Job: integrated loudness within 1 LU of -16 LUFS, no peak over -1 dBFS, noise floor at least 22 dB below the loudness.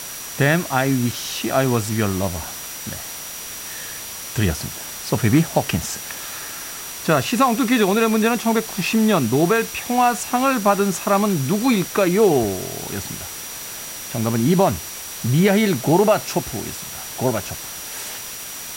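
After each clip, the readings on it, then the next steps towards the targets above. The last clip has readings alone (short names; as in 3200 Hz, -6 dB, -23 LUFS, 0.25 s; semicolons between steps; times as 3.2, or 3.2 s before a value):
steady tone 5800 Hz; tone level -37 dBFS; noise floor -33 dBFS; noise floor target -43 dBFS; loudness -20.5 LUFS; peak -4.5 dBFS; loudness target -16.0 LUFS
-> notch 5800 Hz, Q 30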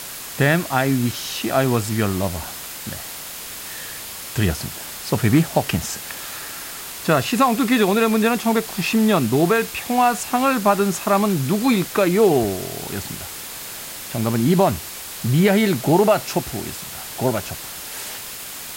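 steady tone none; noise floor -34 dBFS; noise floor target -43 dBFS
-> denoiser 9 dB, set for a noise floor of -34 dBFS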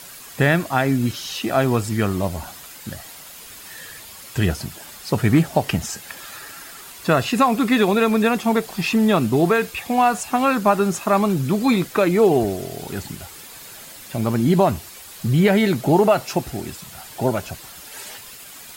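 noise floor -40 dBFS; noise floor target -42 dBFS
-> denoiser 6 dB, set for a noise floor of -40 dBFS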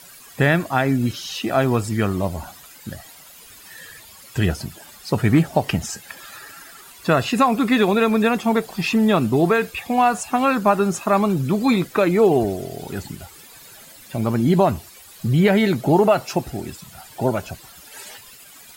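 noise floor -45 dBFS; loudness -19.5 LUFS; peak -5.0 dBFS; loudness target -16.0 LUFS
-> gain +3.5 dB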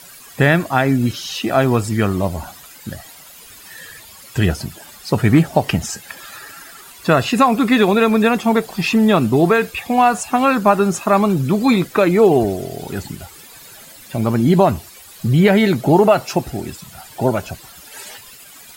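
loudness -16.0 LUFS; peak -1.5 dBFS; noise floor -41 dBFS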